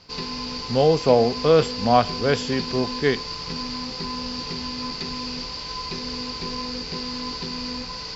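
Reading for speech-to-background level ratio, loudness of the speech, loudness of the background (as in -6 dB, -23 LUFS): 8.5 dB, -21.0 LUFS, -29.5 LUFS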